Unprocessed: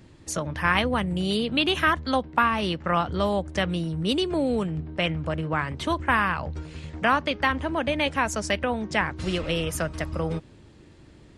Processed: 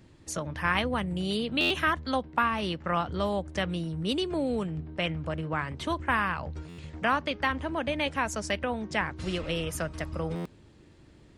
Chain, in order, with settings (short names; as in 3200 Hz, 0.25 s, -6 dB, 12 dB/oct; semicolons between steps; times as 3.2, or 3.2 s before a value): stuck buffer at 1.6/6.68/10.35, samples 512, times 8; gain -4.5 dB